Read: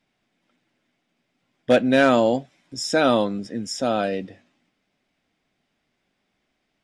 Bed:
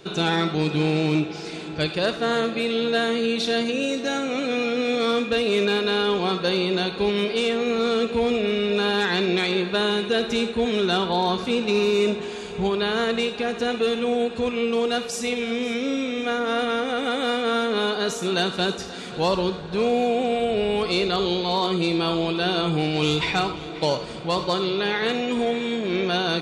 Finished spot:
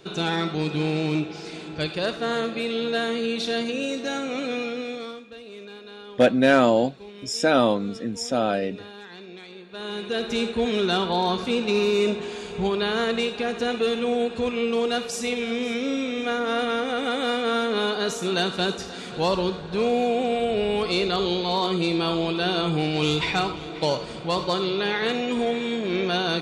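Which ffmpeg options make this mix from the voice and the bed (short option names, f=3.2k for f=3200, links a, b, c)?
-filter_complex "[0:a]adelay=4500,volume=-0.5dB[a];[1:a]volume=16dB,afade=t=out:st=4.47:d=0.74:silence=0.141254,afade=t=in:st=9.68:d=0.78:silence=0.112202[b];[a][b]amix=inputs=2:normalize=0"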